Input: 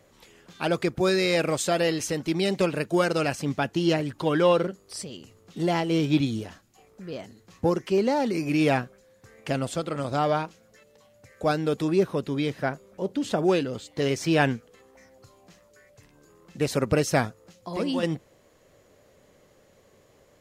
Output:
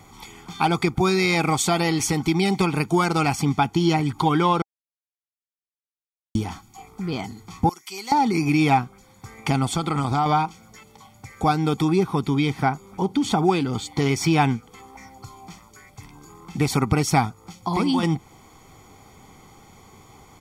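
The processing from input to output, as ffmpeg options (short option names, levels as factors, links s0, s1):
-filter_complex "[0:a]asettb=1/sr,asplit=3[s0][s1][s2];[s0]atrim=end=7.694[s3];[s1]atrim=start=7.69:end=8.12,asetpts=PTS-STARTPTS,afade=t=in:d=0.004:c=qsin,afade=t=out:st=0.426:d=0.004:c=qsin,aderivative[s4];[s2]atrim=start=8.116[s5];[s3][s4]acrossfade=d=0.004:c1=hsin:c2=qsin[s6];[s6][s5]acrossfade=d=0.004:c1=qsin:c2=hsin,asettb=1/sr,asplit=3[s7][s8][s9];[s7]atrim=end=9.674[s10];[s8]atrim=start=9.67:end=10.26,asetpts=PTS-STARTPTS,afade=t=in:d=0.004:c=qsin,afade=t=out:st=0.586:d=0.004:c=qsin,acompressor=threshold=0.0447:ratio=2.5:attack=3.2:release=140:knee=1:detection=peak[s11];[s9]atrim=start=10.256[s12];[s10][s11]acrossfade=d=0.004:c1=hsin:c2=qsin[s13];[s13][s12]acrossfade=d=0.004:c1=qsin:c2=hsin,asplit=3[s14][s15][s16];[s14]atrim=end=4.62,asetpts=PTS-STARTPTS,afade=t=out:st=4.616:d=0.004:c=hsin[s17];[s15]atrim=start=4.62:end=6.35,asetpts=PTS-STARTPTS,volume=0[s18];[s16]atrim=start=6.35,asetpts=PTS-STARTPTS,afade=t=in:d=0.004:c=hsin[s19];[s17][s18][s19]concat=n=3:v=0:a=1,equalizer=f=800:w=5.7:g=11,aecho=1:1:0.9:0.85,acompressor=threshold=0.0316:ratio=2,volume=2.66"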